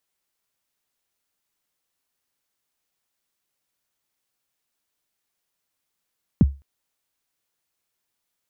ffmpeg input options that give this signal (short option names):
-f lavfi -i "aevalsrc='0.447*pow(10,-3*t/0.27)*sin(2*PI*(270*0.029/log(69/270)*(exp(log(69/270)*min(t,0.029)/0.029)-1)+69*max(t-0.029,0)))':d=0.21:s=44100"